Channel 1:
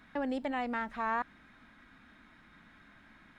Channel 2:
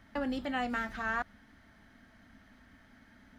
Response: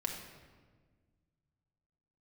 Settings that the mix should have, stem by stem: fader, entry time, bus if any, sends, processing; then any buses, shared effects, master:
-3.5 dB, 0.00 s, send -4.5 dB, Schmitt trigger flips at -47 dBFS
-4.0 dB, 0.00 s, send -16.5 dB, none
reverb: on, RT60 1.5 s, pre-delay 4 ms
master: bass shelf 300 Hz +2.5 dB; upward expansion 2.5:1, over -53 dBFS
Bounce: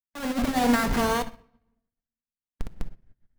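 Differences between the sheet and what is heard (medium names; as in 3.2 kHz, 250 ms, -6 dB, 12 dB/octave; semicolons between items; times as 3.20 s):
stem 1 -3.5 dB -> +7.0 dB; reverb return +9.5 dB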